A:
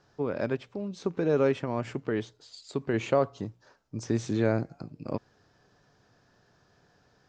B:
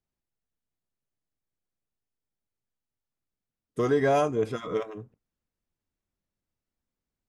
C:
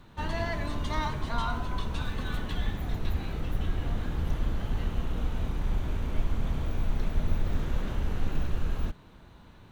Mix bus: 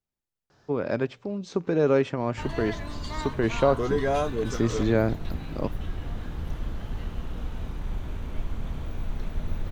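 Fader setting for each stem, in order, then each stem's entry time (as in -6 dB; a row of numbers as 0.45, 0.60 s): +3.0, -2.5, -3.0 dB; 0.50, 0.00, 2.20 s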